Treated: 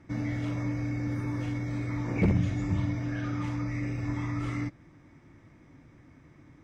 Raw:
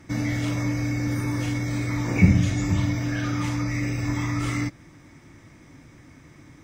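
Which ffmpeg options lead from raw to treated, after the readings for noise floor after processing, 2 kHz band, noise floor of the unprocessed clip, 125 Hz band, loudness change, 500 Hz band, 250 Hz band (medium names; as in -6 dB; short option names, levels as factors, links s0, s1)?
-57 dBFS, -9.0 dB, -51 dBFS, -6.0 dB, -6.5 dB, -4.0 dB, -6.0 dB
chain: -af "lowpass=f=1800:p=1,aeval=exprs='0.299*(abs(mod(val(0)/0.299+3,4)-2)-1)':c=same,volume=0.531"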